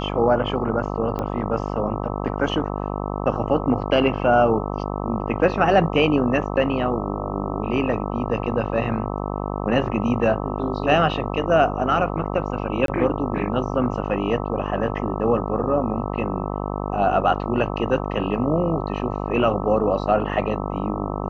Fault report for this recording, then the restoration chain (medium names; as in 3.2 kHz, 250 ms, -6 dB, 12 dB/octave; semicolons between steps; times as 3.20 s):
buzz 50 Hz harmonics 26 -27 dBFS
1.19 s: pop -15 dBFS
12.86–12.88 s: dropout 22 ms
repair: de-click; de-hum 50 Hz, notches 26; interpolate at 12.86 s, 22 ms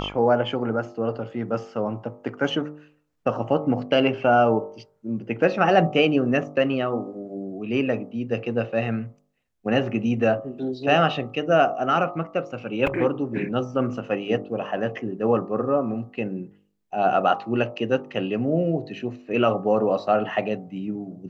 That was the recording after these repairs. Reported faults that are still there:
nothing left